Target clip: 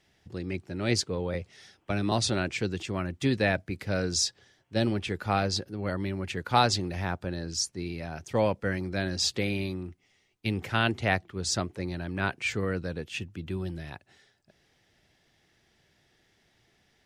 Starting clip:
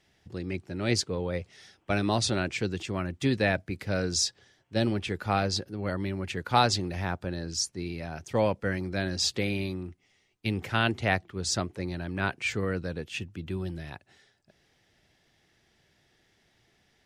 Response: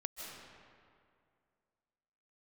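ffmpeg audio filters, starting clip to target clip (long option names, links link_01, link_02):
-filter_complex "[0:a]asettb=1/sr,asplit=3[link_01][link_02][link_03];[link_01]atrim=end=1.344[link_04];[link_02]atrim=start=1.34:end=2.12,asetpts=PTS-STARTPTS,afade=type=in:duration=0.004:curve=qsin,afade=type=out:start_time=0.776:duration=0.004:curve=qsin,acrossover=split=300[link_05][link_06];[link_06]acompressor=threshold=-32dB:ratio=2.5[link_07];[link_05][link_07]amix=inputs=2:normalize=0[link_08];[link_03]atrim=start=2.116[link_09];[link_04][link_08]acrossfade=duration=0.004:curve1=hsin:curve2=qsin[link_10];[link_10][link_09]acrossfade=duration=0.004:curve1=qsin:curve2=hsin"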